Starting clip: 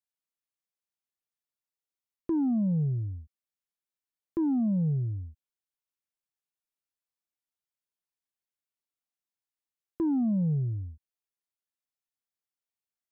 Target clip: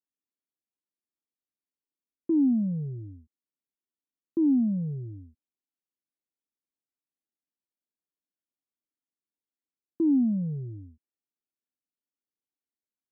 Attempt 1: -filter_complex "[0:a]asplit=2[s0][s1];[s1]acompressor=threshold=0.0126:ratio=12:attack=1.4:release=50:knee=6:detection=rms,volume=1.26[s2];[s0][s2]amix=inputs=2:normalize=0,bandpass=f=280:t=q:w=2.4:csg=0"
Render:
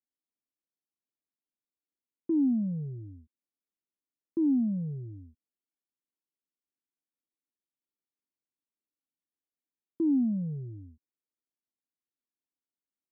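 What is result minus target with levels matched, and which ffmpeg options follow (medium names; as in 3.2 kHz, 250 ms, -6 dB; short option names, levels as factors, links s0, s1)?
compression: peak gain reduction +9 dB
-filter_complex "[0:a]asplit=2[s0][s1];[s1]acompressor=threshold=0.0422:ratio=12:attack=1.4:release=50:knee=6:detection=rms,volume=1.26[s2];[s0][s2]amix=inputs=2:normalize=0,bandpass=f=280:t=q:w=2.4:csg=0"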